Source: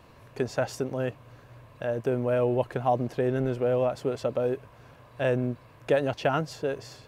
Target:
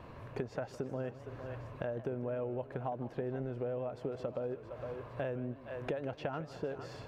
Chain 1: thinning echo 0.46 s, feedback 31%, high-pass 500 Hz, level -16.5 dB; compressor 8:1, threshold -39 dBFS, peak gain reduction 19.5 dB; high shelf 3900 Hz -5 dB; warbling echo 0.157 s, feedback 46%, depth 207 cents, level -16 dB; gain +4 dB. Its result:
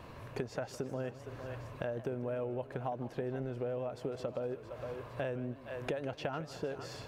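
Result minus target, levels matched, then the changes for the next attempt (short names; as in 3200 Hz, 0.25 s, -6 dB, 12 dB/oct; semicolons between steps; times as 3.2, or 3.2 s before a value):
8000 Hz band +8.0 dB
change: high shelf 3900 Hz -16.5 dB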